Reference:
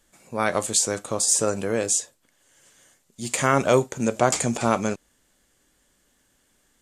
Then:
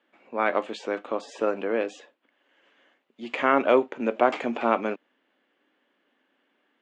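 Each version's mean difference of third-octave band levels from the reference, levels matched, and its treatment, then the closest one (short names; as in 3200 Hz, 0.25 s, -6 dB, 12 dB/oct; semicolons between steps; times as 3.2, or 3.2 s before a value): 9.0 dB: Chebyshev band-pass 260–2900 Hz, order 3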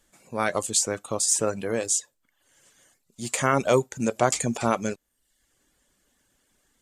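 3.0 dB: reverb removal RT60 0.65 s; gain -1.5 dB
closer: second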